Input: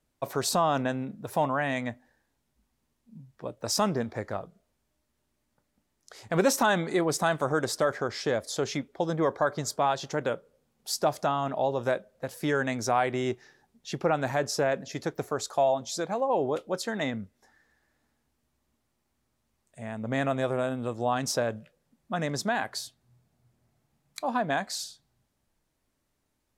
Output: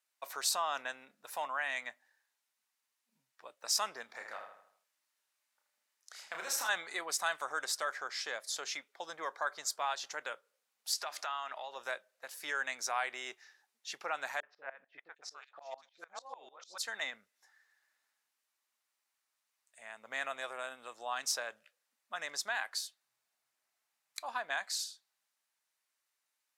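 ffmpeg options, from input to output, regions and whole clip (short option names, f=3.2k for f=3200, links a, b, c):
-filter_complex "[0:a]asettb=1/sr,asplit=3[a][b][c];[a]atrim=end=4.064[d];[b]atrim=start=4.06:end=6.69,asetpts=PTS-STARTPTS,afade=t=in:d=0.004:c=qsin,afade=t=out:st=2.626:d=0.004:c=qsin,acompressor=threshold=-26dB:ratio=6:attack=3.2:release=140:knee=1:detection=peak,asplit=2[e][f];[f]adelay=32,volume=-5dB[g];[e][g]amix=inputs=2:normalize=0,atrim=end_sample=115983,asplit=2[h][i];[i]adelay=79,lowpass=f=4.3k:p=1,volume=-6.5dB,asplit=2[j][k];[k]adelay=79,lowpass=f=4.3k:p=1,volume=0.46,asplit=2[l][m];[m]adelay=79,lowpass=f=4.3k:p=1,volume=0.46,asplit=2[n][o];[o]adelay=79,lowpass=f=4.3k:p=1,volume=0.46,asplit=2[p][q];[q]adelay=79,lowpass=f=4.3k:p=1,volume=0.46[r];[h][j][l][n][p][r]amix=inputs=6:normalize=0,atrim=end_sample=115983[s];[c]atrim=start=6.686[t];[d][s]acrossfade=d=0.004:c1=hsin:c2=qsin[u];[u][t]acrossfade=d=0.004:c1=qsin:c2=hsin,asettb=1/sr,asplit=3[v][w][x];[v]atrim=end=10.934[y];[w]atrim=start=10.93:end=11.76,asetpts=PTS-STARTPTS,afade=t=in:d=0.004:c=qsin,afade=t=out:st=0.826:d=0.004:c=qsin,equalizer=f=2.1k:w=0.37:g=10.5,bandreject=f=60:t=h:w=6,bandreject=f=120:t=h:w=6,bandreject=f=180:t=h:w=6,bandreject=f=240:t=h:w=6,bandreject=f=300:t=h:w=6,bandreject=f=360:t=h:w=6,acompressor=threshold=-31dB:ratio=2.5:attack=3.2:release=140:knee=1:detection=peak[z];[x]atrim=start=11.756[aa];[y][z]acrossfade=d=0.004:c1=hsin:c2=qsin[ab];[ab][aa]acrossfade=d=0.004:c1=qsin:c2=hsin,asettb=1/sr,asplit=3[ac][ad][ae];[ac]atrim=end=14.404[af];[ad]atrim=start=14.4:end=16.78,asetpts=PTS-STARTPTS,afade=t=in:d=0.004:c=qsin,afade=t=out:st=2.376:d=0.004:c=qsin,lowpass=4k,acrossover=split=520|2700[ag][ah][ai];[ah]adelay=30[aj];[ai]adelay=760[ak];[ag][aj][ak]amix=inputs=3:normalize=0,atrim=end_sample=104958,aeval=exprs='val(0)*pow(10,-22*if(lt(mod(-6.7*n/s,1),2*abs(-6.7)/1000),1-mod(-6.7*n/s,1)/(2*abs(-6.7)/1000),(mod(-6.7*n/s,1)-2*abs(-6.7)/1000)/(1-2*abs(-6.7)/1000))/20)':c=same[al];[ae]atrim=start=16.776[am];[af][al]acrossfade=d=0.004:c1=hsin:c2=qsin[an];[an][am]acrossfade=d=0.004:c1=qsin:c2=hsin,highpass=1.3k,bandreject=f=3.3k:w=29,volume=-2dB"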